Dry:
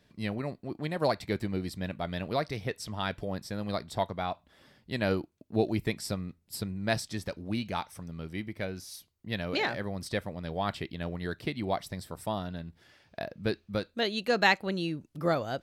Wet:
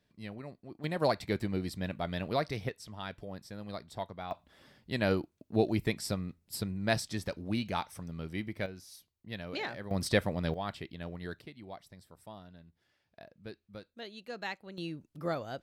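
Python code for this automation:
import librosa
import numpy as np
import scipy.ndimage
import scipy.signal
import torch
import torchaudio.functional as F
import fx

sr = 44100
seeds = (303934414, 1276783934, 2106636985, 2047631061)

y = fx.gain(x, sr, db=fx.steps((0.0, -10.0), (0.84, -1.0), (2.69, -8.5), (4.31, -0.5), (8.66, -7.5), (9.91, 5.0), (10.54, -6.0), (11.42, -15.5), (14.78, -6.5)))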